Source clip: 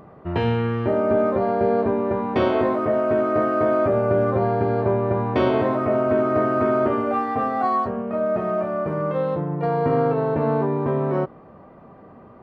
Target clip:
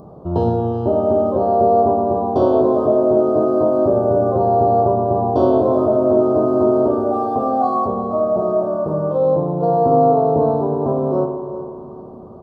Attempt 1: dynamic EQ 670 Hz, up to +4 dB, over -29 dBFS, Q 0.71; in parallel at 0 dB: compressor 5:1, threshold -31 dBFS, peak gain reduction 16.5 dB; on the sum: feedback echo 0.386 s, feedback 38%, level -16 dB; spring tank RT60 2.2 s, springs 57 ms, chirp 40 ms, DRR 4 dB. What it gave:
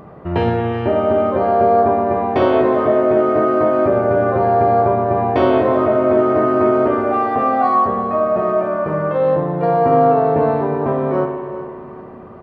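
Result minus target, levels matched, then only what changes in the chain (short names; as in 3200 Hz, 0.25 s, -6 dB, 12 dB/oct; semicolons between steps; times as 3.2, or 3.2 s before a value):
2000 Hz band +18.5 dB
add after dynamic EQ: Butterworth band-stop 2100 Hz, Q 0.55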